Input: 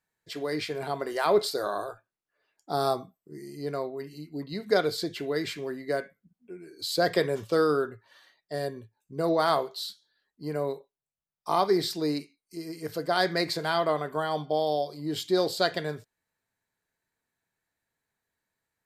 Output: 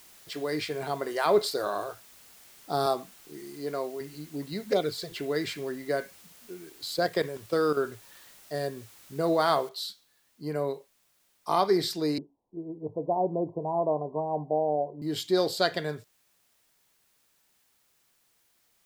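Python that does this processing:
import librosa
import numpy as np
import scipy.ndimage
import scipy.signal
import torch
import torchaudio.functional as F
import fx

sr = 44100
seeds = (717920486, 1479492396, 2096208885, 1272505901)

y = fx.highpass(x, sr, hz=200.0, slope=12, at=(2.86, 4.01))
y = fx.env_flanger(y, sr, rest_ms=5.8, full_db=-18.5, at=(4.64, 5.12))
y = fx.level_steps(y, sr, step_db=12, at=(6.69, 7.77))
y = fx.noise_floor_step(y, sr, seeds[0], at_s=9.69, before_db=-54, after_db=-69, tilt_db=0.0)
y = fx.steep_lowpass(y, sr, hz=1000.0, slope=96, at=(12.18, 15.02))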